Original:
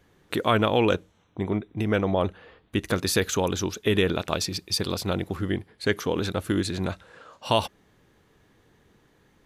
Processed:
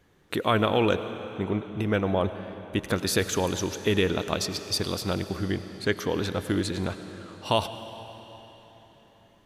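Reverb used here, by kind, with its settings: digital reverb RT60 3.9 s, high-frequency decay 0.95×, pre-delay 60 ms, DRR 10.5 dB; gain -1.5 dB

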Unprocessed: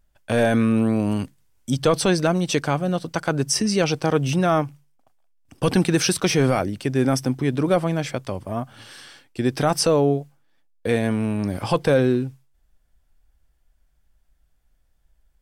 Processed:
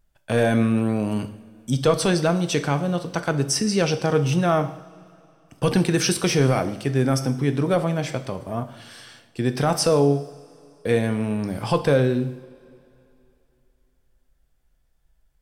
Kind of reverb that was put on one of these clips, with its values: two-slope reverb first 0.64 s, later 2.9 s, from -18 dB, DRR 8.5 dB; gain -1.5 dB

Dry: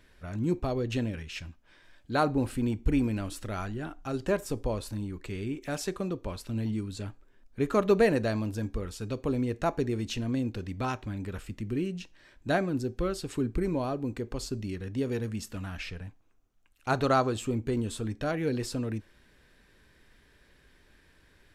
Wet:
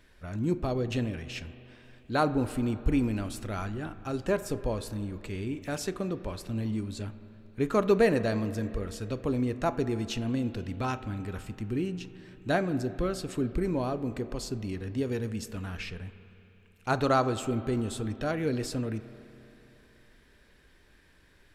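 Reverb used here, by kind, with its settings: spring tank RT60 3.2 s, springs 32/39 ms, chirp 60 ms, DRR 13 dB

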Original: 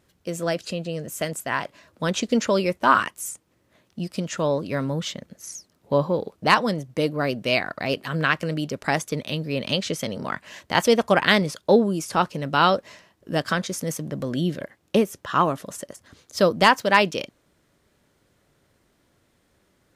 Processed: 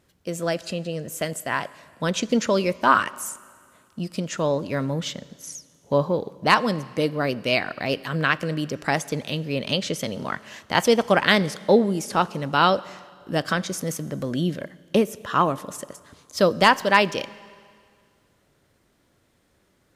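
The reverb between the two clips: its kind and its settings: Schroeder reverb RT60 2 s, combs from 29 ms, DRR 19 dB

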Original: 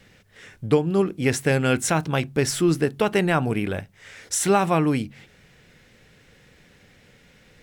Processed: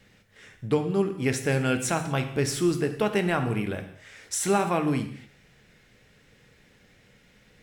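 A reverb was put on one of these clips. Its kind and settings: non-linear reverb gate 0.27 s falling, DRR 6.5 dB; gain -5 dB

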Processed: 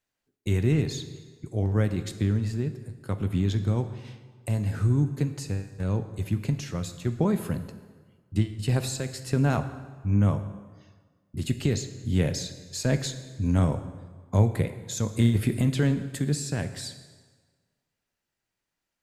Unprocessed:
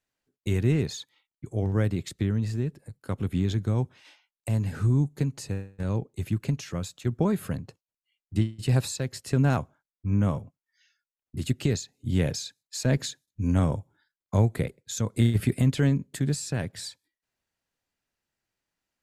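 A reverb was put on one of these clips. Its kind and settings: plate-style reverb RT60 1.5 s, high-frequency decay 0.8×, DRR 9 dB

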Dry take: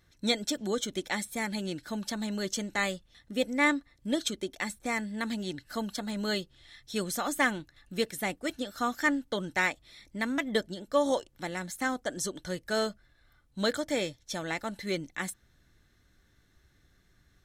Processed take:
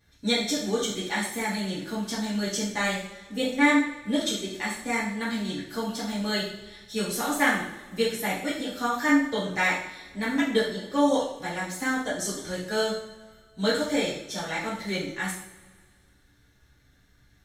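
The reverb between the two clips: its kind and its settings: two-slope reverb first 0.57 s, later 1.9 s, from -18 dB, DRR -9 dB; gain -5 dB

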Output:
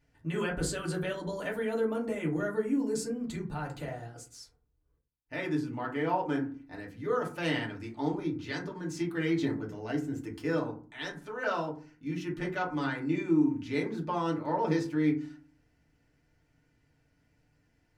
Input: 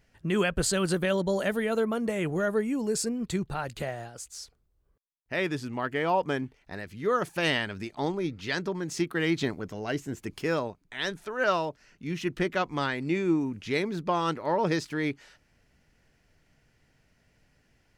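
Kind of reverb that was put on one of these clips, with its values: FDN reverb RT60 0.39 s, low-frequency decay 1.6×, high-frequency decay 0.4×, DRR -2.5 dB; gain -10 dB

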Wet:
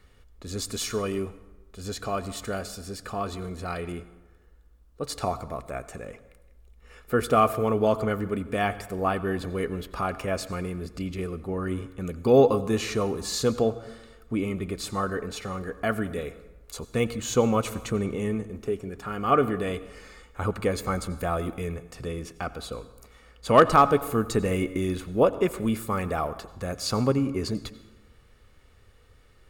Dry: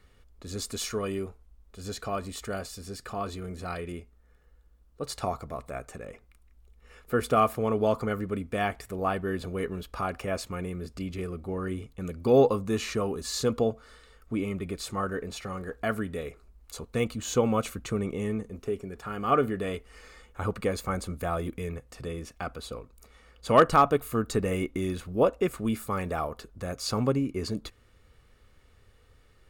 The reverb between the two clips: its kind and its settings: plate-style reverb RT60 1.1 s, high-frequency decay 0.65×, pre-delay 75 ms, DRR 15 dB; gain +2.5 dB

